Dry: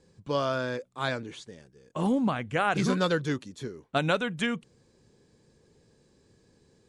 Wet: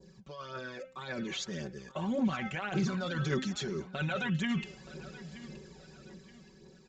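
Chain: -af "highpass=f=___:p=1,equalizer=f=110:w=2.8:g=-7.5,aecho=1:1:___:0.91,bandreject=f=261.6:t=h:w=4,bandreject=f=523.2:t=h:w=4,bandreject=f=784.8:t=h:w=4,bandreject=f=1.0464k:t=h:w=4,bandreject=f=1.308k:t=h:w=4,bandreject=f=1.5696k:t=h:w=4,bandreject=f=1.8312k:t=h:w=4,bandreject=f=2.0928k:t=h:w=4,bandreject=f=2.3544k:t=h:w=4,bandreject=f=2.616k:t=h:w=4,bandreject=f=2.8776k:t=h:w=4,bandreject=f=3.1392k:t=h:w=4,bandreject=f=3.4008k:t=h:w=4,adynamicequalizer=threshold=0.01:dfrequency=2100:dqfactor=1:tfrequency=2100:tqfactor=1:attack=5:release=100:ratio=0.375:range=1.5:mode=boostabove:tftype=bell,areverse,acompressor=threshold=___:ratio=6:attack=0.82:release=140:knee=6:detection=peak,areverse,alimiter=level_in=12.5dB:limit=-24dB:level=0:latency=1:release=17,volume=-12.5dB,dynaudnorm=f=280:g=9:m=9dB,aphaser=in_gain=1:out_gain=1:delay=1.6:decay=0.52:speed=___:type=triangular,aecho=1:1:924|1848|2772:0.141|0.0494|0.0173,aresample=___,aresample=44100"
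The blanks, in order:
45, 5.3, -36dB, 1.8, 16000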